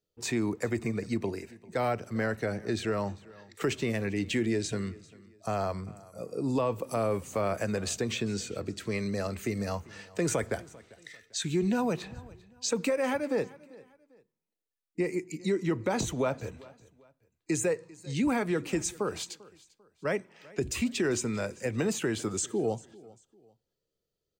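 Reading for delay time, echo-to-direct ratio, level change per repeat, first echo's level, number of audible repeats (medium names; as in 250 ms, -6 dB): 395 ms, -21.5 dB, -9.5 dB, -22.0 dB, 2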